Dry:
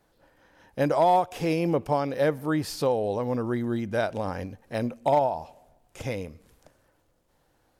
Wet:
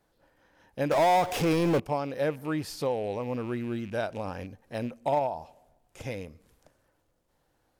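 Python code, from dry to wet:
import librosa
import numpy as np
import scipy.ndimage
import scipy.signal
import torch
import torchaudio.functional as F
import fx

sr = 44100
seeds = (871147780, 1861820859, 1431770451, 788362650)

y = fx.rattle_buzz(x, sr, strikes_db=-34.0, level_db=-35.0)
y = fx.power_curve(y, sr, exponent=0.5, at=(0.91, 1.8))
y = y * 10.0 ** (-4.5 / 20.0)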